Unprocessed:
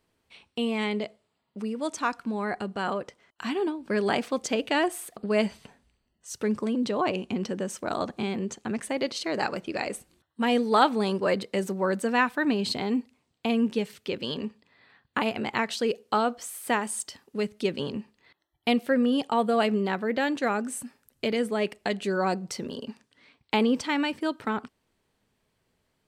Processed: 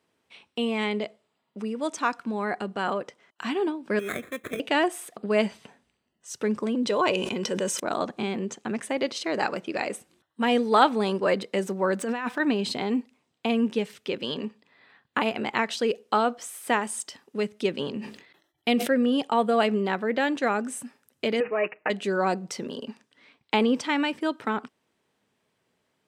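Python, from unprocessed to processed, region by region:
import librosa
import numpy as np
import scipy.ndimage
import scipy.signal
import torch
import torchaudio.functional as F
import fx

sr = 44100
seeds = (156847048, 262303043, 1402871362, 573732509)

y = fx.chain(x, sr, fx.low_shelf(hz=440.0, db=-10.0),
    fx.sample_hold(seeds[0], rate_hz=2900.0, jitter_pct=0),
    fx.fixed_phaser(hz=2100.0, stages=4), at=(3.99, 4.6))
y = fx.chain(y, sr, fx.high_shelf(hz=3400.0, db=9.0),
    fx.comb(ms=2.0, depth=0.41),
    fx.sustainer(db_per_s=35.0), at=(6.87, 7.8))
y = fx.chain(y, sr, fx.median_filter(points=3),
    fx.over_compress(threshold_db=-30.0, ratio=-1.0),
    fx.clip_hard(threshold_db=-20.5), at=(11.99, 12.4))
y = fx.chain(y, sr, fx.peak_eq(hz=1000.0, db=-5.5, octaves=0.8),
    fx.sustainer(db_per_s=99.0), at=(17.94, 19.07))
y = fx.chain(y, sr, fx.peak_eq(hz=170.0, db=-10.0, octaves=1.6),
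    fx.resample_bad(factor=8, down='none', up='filtered'),
    fx.comb(ms=6.4, depth=0.75), at=(21.4, 21.9))
y = scipy.signal.sosfilt(scipy.signal.bessel(2, 180.0, 'highpass', norm='mag', fs=sr, output='sos'), y)
y = fx.high_shelf(y, sr, hz=12000.0, db=-9.5)
y = fx.notch(y, sr, hz=4400.0, q=14.0)
y = y * 10.0 ** (2.0 / 20.0)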